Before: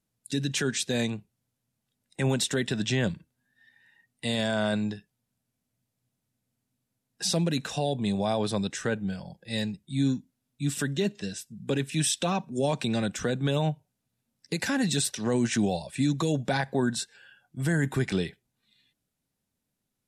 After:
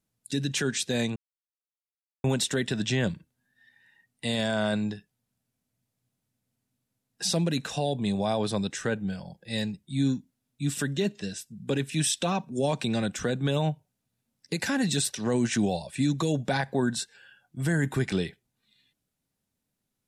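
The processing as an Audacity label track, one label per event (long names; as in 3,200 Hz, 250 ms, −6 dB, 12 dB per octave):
1.160000	2.240000	silence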